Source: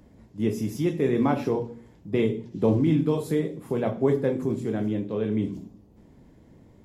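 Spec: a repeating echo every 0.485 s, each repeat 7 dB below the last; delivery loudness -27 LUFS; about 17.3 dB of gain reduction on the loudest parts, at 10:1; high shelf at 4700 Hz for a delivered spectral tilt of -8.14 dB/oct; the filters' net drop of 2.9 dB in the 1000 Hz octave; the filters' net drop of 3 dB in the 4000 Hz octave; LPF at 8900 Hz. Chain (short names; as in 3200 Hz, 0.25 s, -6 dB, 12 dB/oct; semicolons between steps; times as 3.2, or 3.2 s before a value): LPF 8900 Hz; bell 1000 Hz -4 dB; bell 4000 Hz -5.5 dB; high shelf 4700 Hz +4 dB; compressor 10:1, threshold -36 dBFS; feedback echo 0.485 s, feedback 45%, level -7 dB; gain +13.5 dB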